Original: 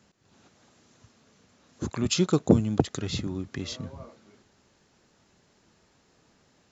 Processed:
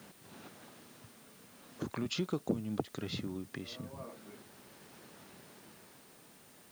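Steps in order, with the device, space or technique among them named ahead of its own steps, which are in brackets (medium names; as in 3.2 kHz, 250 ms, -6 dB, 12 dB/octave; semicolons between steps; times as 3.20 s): medium wave at night (band-pass 130–4000 Hz; compression 4:1, threshold -44 dBFS, peak gain reduction 25 dB; tremolo 0.39 Hz, depth 53%; whistle 9 kHz -77 dBFS; white noise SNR 20 dB); trim +9 dB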